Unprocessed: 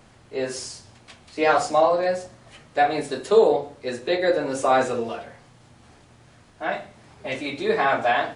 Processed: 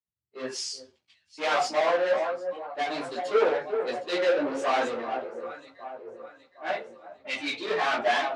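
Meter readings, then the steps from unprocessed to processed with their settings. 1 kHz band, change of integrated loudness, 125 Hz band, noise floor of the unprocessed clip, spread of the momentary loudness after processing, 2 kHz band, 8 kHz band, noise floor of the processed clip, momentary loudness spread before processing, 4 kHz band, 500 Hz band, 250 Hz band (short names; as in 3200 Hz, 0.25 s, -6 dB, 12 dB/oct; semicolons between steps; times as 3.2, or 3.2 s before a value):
-5.5 dB, -5.0 dB, under -10 dB, -53 dBFS, 17 LU, -3.0 dB, -4.0 dB, -75 dBFS, 14 LU, 0.0 dB, -5.0 dB, -6.5 dB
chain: per-bin expansion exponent 1.5; in parallel at +1 dB: limiter -15 dBFS, peak gain reduction 8.5 dB; on the sum: echo with dull and thin repeats by turns 0.382 s, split 1200 Hz, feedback 75%, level -13.5 dB; soft clip -19 dBFS, distortion -7 dB; sample leveller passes 2; chorus voices 4, 1.1 Hz, delay 15 ms, depth 3.8 ms; BPF 320–4400 Hz; three-band expander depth 100%; gain -1 dB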